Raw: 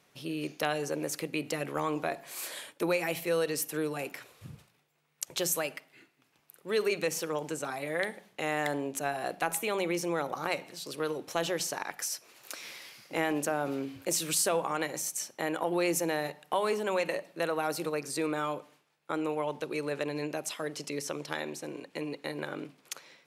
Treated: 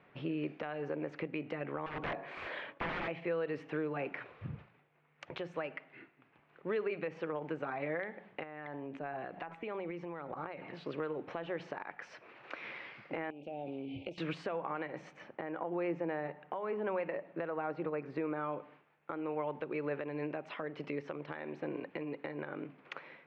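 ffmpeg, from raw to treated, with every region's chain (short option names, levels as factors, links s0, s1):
-filter_complex "[0:a]asettb=1/sr,asplit=3[s0][s1][s2];[s0]atrim=end=1.864[s3];[s1]atrim=start=1.86:end=3.08,asetpts=PTS-STARTPTS,afade=t=in:d=0.004:c=qsin,afade=t=out:st=1.216:d=0.004:c=qsin,bandreject=f=93:t=h:w=4,bandreject=f=186:t=h:w=4,bandreject=f=279:t=h:w=4,bandreject=f=372:t=h:w=4,bandreject=f=465:t=h:w=4,bandreject=f=558:t=h:w=4,bandreject=f=651:t=h:w=4,bandreject=f=744:t=h:w=4,bandreject=f=837:t=h:w=4,bandreject=f=930:t=h:w=4,bandreject=f=1023:t=h:w=4,bandreject=f=1116:t=h:w=4,bandreject=f=1209:t=h:w=4,aeval=exprs='(mod(31.6*val(0)+1,2)-1)/31.6':c=same[s4];[s2]atrim=start=3.076[s5];[s3][s4]acrossfade=d=0.004:c1=hsin:c2=qsin[s6];[s6][s5]acrossfade=d=0.004:c1=qsin:c2=hsin,asettb=1/sr,asplit=3[s7][s8][s9];[s7]atrim=end=8.434[s10];[s8]atrim=start=8.43:end=10.75,asetpts=PTS-STARTPTS,afade=t=in:d=0.004:c=qsin,afade=t=out:st=2.316:d=0.004:c=qsin,acompressor=threshold=0.00794:ratio=8:attack=3.2:release=140:knee=1:detection=peak,aphaser=in_gain=1:out_gain=1:delay=1.1:decay=0.29:speed=1.5:type=sinusoidal[s11];[s9]atrim=start=10.746[s12];[s10][s11]acrossfade=d=0.004:c1=hsin:c2=qsin[s13];[s13][s12]acrossfade=d=0.004:c1=qsin:c2=hsin,asettb=1/sr,asplit=3[s14][s15][s16];[s14]atrim=end=13.304[s17];[s15]atrim=start=13.3:end=14.18,asetpts=PTS-STARTPTS,afade=t=in:d=0.004:c=qsin,afade=t=out:st=0.876:d=0.004:c=qsin,asuperstop=centerf=1400:order=12:qfactor=0.98,acompressor=threshold=0.00891:ratio=10:attack=3.2:release=140:knee=1:detection=peak,equalizer=f=3200:w=1.8:g=10[s18];[s16]atrim=start=14.176[s19];[s17][s18]acrossfade=d=0.004:c1=hsin:c2=qsin[s20];[s20][s19]acrossfade=d=0.004:c1=qsin:c2=hsin,asettb=1/sr,asplit=3[s21][s22][s23];[s21]atrim=end=15.134[s24];[s22]atrim=start=15.13:end=18.53,asetpts=PTS-STARTPTS,afade=t=in:d=0.004:c=qsin,afade=t=out:st=3.396:d=0.004:c=qsin,lowpass=11000,aemphasis=mode=reproduction:type=75kf[s25];[s23]atrim=start=18.526[s26];[s24][s25]acrossfade=d=0.004:c1=hsin:c2=qsin[s27];[s27][s26]acrossfade=d=0.004:c1=qsin:c2=hsin,lowpass=f=2400:w=0.5412,lowpass=f=2400:w=1.3066,acompressor=threshold=0.01:ratio=2.5,alimiter=level_in=2:limit=0.0631:level=0:latency=1:release=300,volume=0.501,volume=1.68"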